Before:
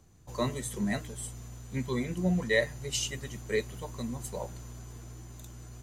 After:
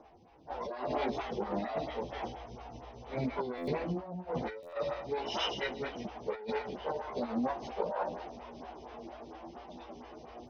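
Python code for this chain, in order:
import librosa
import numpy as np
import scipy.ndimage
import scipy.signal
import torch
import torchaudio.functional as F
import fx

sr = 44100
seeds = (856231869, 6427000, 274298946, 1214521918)

p1 = fx.lower_of_two(x, sr, delay_ms=0.35)
p2 = scipy.signal.sosfilt(scipy.signal.butter(12, 5300.0, 'lowpass', fs=sr, output='sos'), p1)
p3 = fx.peak_eq(p2, sr, hz=780.0, db=13.0, octaves=1.4)
p4 = p3 + fx.echo_thinned(p3, sr, ms=69, feedback_pct=38, hz=440.0, wet_db=-13.0, dry=0)
p5 = fx.stretch_vocoder_free(p4, sr, factor=1.8)
p6 = fx.peak_eq(p5, sr, hz=120.0, db=-11.0, octaves=0.6)
p7 = fx.over_compress(p6, sr, threshold_db=-37.0, ratio=-1.0)
p8 = fx.highpass(p7, sr, hz=85.0, slope=6)
p9 = fx.buffer_glitch(p8, sr, at_s=(3.57, 4.62), block=512, repeats=8)
p10 = fx.stagger_phaser(p9, sr, hz=4.3)
y = p10 * librosa.db_to_amplitude(4.0)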